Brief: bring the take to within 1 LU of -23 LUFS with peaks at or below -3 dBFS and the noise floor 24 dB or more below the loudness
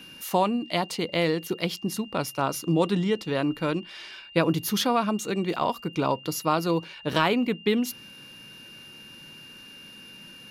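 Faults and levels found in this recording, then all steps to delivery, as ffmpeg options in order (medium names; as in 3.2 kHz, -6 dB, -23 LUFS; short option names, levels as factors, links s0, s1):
steady tone 2.8 kHz; tone level -45 dBFS; loudness -26.5 LUFS; peak level -9.0 dBFS; loudness target -23.0 LUFS
-> -af "bandreject=f=2800:w=30"
-af "volume=1.5"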